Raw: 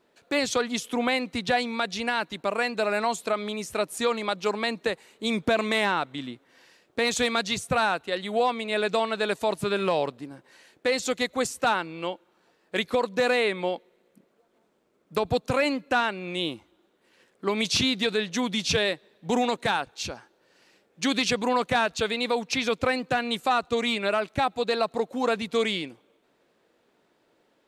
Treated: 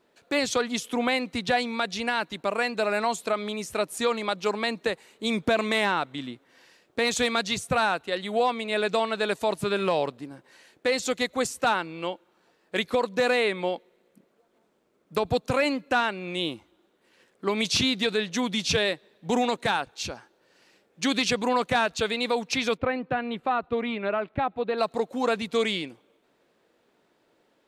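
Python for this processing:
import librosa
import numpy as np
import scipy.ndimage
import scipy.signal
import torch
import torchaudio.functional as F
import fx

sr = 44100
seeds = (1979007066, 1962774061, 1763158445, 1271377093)

y = fx.air_absorb(x, sr, metres=480.0, at=(22.76, 24.77), fade=0.02)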